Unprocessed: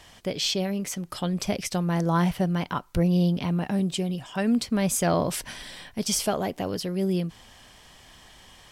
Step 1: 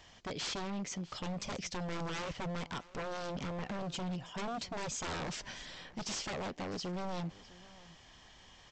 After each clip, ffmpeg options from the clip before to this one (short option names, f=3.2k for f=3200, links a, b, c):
-af "aresample=16000,aeval=exprs='0.0473*(abs(mod(val(0)/0.0473+3,4)-2)-1)':c=same,aresample=44100,aecho=1:1:654:0.1,volume=-7dB"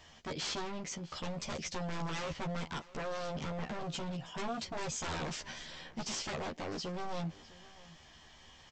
-filter_complex "[0:a]asplit=2[a][b];[b]adelay=13,volume=-3.5dB[c];[a][c]amix=inputs=2:normalize=0,volume=-1dB"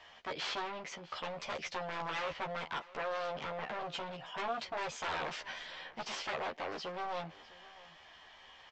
-filter_complex "[0:a]acrossover=split=450 3900:gain=0.158 1 0.126[a][b][c];[a][b][c]amix=inputs=3:normalize=0,volume=4dB"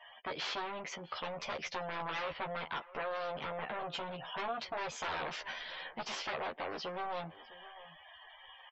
-af "afftdn=nr=34:nf=-56,acompressor=threshold=-48dB:ratio=1.5,volume=4.5dB"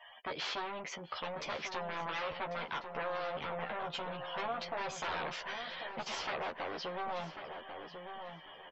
-filter_complex "[0:a]asplit=2[a][b];[b]adelay=1094,lowpass=f=1.8k:p=1,volume=-7dB,asplit=2[c][d];[d]adelay=1094,lowpass=f=1.8k:p=1,volume=0.33,asplit=2[e][f];[f]adelay=1094,lowpass=f=1.8k:p=1,volume=0.33,asplit=2[g][h];[h]adelay=1094,lowpass=f=1.8k:p=1,volume=0.33[i];[a][c][e][g][i]amix=inputs=5:normalize=0"